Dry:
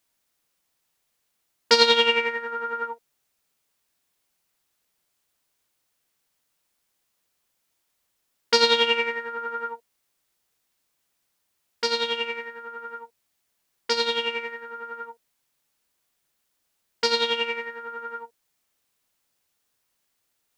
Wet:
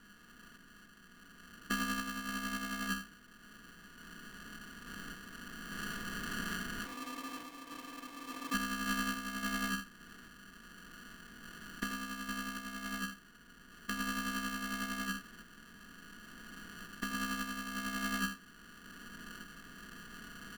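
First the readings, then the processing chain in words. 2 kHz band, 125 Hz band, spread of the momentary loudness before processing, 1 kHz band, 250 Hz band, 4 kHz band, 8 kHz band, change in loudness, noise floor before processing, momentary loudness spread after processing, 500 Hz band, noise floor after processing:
-8.5 dB, n/a, 20 LU, -11.5 dB, +3.5 dB, -18.5 dB, -3.5 dB, -17.0 dB, -75 dBFS, 19 LU, -26.0 dB, -59 dBFS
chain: per-bin compression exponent 0.4; recorder AGC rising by 5.1 dB/s; low shelf 400 Hz +6.5 dB; spectral gain 6.86–8.54, 490–1400 Hz -26 dB; random-step tremolo; vocal tract filter a; on a send: echo 82 ms -11.5 dB; on the sum: polarity switched at an audio rate 730 Hz; gain +2 dB

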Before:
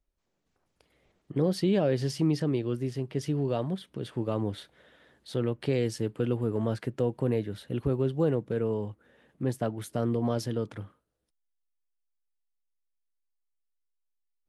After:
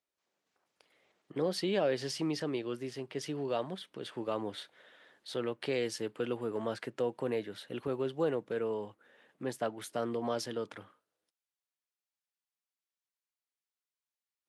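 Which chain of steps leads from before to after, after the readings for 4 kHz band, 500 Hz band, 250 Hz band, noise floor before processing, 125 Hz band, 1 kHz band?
+1.0 dB, -4.0 dB, -8.0 dB, -79 dBFS, -15.0 dB, -0.5 dB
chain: weighting filter A

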